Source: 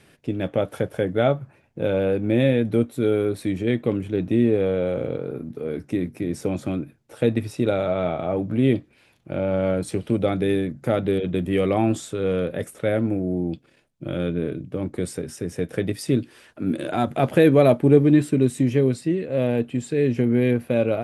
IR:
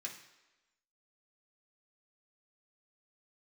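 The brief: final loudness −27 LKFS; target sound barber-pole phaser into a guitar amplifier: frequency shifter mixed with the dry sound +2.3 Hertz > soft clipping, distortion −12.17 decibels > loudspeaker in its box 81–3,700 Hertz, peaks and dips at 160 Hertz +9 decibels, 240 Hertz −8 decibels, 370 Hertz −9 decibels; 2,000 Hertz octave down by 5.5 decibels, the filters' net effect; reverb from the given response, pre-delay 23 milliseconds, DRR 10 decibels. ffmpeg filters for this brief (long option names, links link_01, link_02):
-filter_complex "[0:a]equalizer=frequency=2000:width_type=o:gain=-7,asplit=2[link_01][link_02];[1:a]atrim=start_sample=2205,adelay=23[link_03];[link_02][link_03]afir=irnorm=-1:irlink=0,volume=-8dB[link_04];[link_01][link_04]amix=inputs=2:normalize=0,asplit=2[link_05][link_06];[link_06]afreqshift=2.3[link_07];[link_05][link_07]amix=inputs=2:normalize=1,asoftclip=threshold=-18.5dB,highpass=81,equalizer=frequency=160:width_type=q:width=4:gain=9,equalizer=frequency=240:width_type=q:width=4:gain=-8,equalizer=frequency=370:width_type=q:width=4:gain=-9,lowpass=frequency=3700:width=0.5412,lowpass=frequency=3700:width=1.3066,volume=3dB"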